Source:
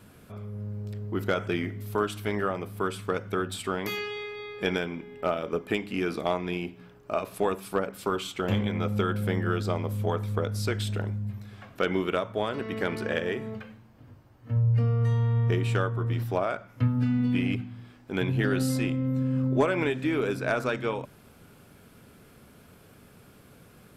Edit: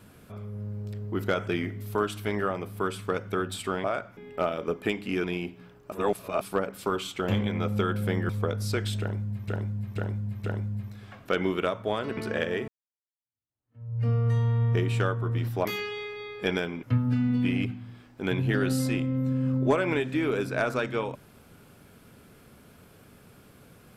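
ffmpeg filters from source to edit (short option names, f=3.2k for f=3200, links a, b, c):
-filter_complex "[0:a]asplit=14[a][b][c][d][e][f][g][h][i][j][k][l][m][n];[a]atrim=end=3.842[o];[b]atrim=start=16.398:end=16.732[p];[c]atrim=start=5.018:end=6.092[q];[d]atrim=start=6.438:end=7.122[r];[e]atrim=start=7.118:end=7.612,asetpts=PTS-STARTPTS,areverse[s];[f]atrim=start=7.608:end=9.492[t];[g]atrim=start=10.228:end=11.422[u];[h]atrim=start=10.938:end=11.422[v];[i]atrim=start=10.938:end=11.422[w];[j]atrim=start=10.938:end=12.672[x];[k]atrim=start=12.918:end=13.43,asetpts=PTS-STARTPTS,afade=t=out:st=0.508:d=0.004:c=hsin[y];[l]atrim=start=13.43:end=16.402,asetpts=PTS-STARTPTS,afade=t=in:d=1.4:c=exp[z];[m]atrim=start=3.838:end=5.022[aa];[n]atrim=start=16.728[ab];[o][p]acrossfade=d=0.004:c1=hsin:c2=hsin[ac];[ac][q]acrossfade=d=0.004:c1=hsin:c2=hsin[ad];[ad][r]acrossfade=d=0.004:c1=hsin:c2=hsin[ae];[ae][s]acrossfade=d=0.004:c1=hsin:c2=hsin[af];[af][t]acrossfade=d=0.004:c1=hsin:c2=hsin[ag];[ag][u]acrossfade=d=0.004:c1=hsin:c2=hsin[ah];[ah][v]acrossfade=d=0.004:c1=hsin:c2=hsin[ai];[ai][w]acrossfade=d=0.004:c1=hsin:c2=hsin[aj];[aj][x]acrossfade=d=0.004:c1=hsin:c2=hsin[ak];[y][z]concat=n=2:v=0:a=1[al];[ak][al]acrossfade=d=0.004:c1=hsin:c2=hsin[am];[am][aa]acrossfade=d=0.004:c1=hsin:c2=hsin[an];[an][ab]acrossfade=d=0.004:c1=hsin:c2=hsin"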